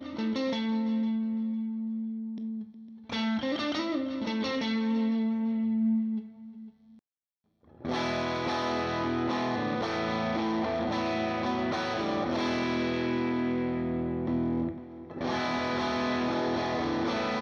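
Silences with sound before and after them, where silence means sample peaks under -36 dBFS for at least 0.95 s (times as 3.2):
6.2–7.85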